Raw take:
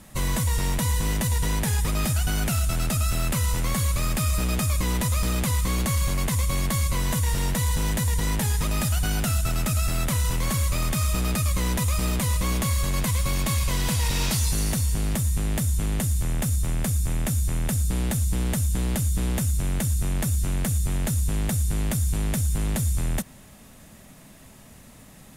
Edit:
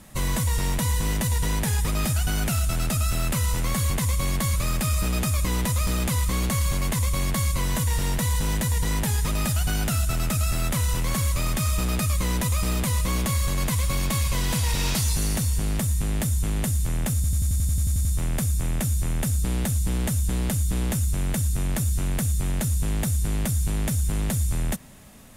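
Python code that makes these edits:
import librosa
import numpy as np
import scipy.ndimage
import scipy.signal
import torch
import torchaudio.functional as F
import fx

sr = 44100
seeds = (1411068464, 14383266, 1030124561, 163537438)

y = fx.edit(x, sr, fx.duplicate(start_s=6.2, length_s=0.64, to_s=3.9),
    fx.stutter(start_s=16.51, slice_s=0.09, count=11), tone=tone)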